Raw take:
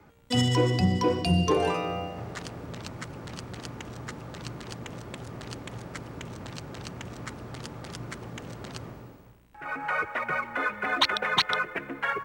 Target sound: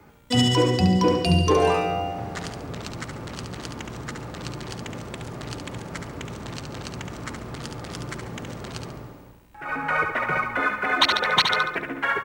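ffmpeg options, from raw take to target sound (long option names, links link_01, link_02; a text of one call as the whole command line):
ffmpeg -i in.wav -filter_complex "[0:a]asettb=1/sr,asplit=3[link_01][link_02][link_03];[link_01]atrim=end=9.694[link_04];[link_02]atrim=start=9.69:end=10.6,asetpts=PTS-STARTPTS,afade=type=in:duration=0.004:curve=qsin,afade=type=out:start_time=0.906:duration=0.004:curve=qsin,lowshelf=frequency=220:gain=6.5[link_05];[link_03]atrim=start=10.596[link_06];[link_04][link_05]acrossfade=duration=0.004:curve1=hsin:curve2=qsin[link_07];[link_07][link_06]acrossfade=duration=0.004:curve1=qsin:curve2=hsin,asplit=2[link_08][link_09];[link_09]aecho=0:1:70|140|210|280|350:0.501|0.19|0.0724|0.0275|0.0105[link_10];[link_08][link_10]amix=inputs=2:normalize=0,acrusher=bits=11:mix=0:aa=0.000001,volume=4dB" out.wav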